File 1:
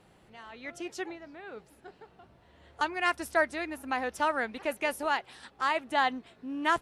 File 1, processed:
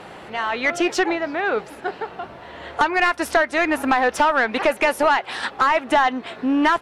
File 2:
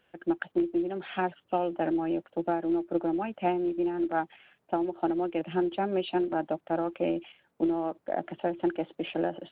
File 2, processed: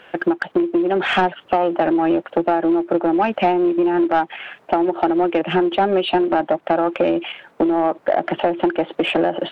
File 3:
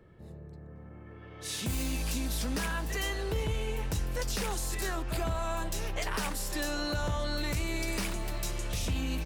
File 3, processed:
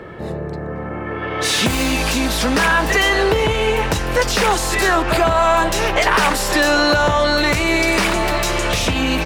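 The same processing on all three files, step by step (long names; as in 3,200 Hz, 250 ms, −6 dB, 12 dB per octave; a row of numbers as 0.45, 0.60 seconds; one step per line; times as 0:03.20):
downward compressor 12 to 1, threshold −34 dBFS
mid-hump overdrive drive 18 dB, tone 1,900 Hz, clips at −20 dBFS
normalise the peak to −6 dBFS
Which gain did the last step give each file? +15.0, +15.5, +19.0 decibels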